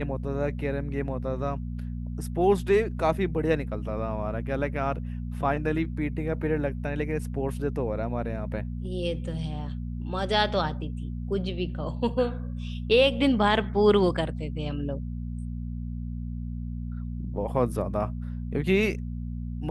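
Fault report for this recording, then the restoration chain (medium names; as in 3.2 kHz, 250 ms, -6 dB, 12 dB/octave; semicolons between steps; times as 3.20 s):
hum 60 Hz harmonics 4 -33 dBFS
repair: de-hum 60 Hz, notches 4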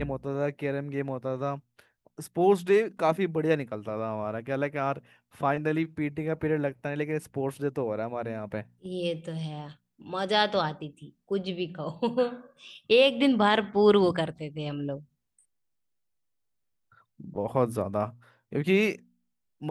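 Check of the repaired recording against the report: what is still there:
nothing left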